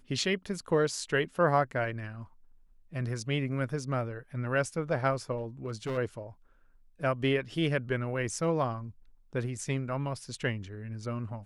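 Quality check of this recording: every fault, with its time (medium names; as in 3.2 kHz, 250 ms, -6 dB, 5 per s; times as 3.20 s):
5.38–5.98 s: clipped -30 dBFS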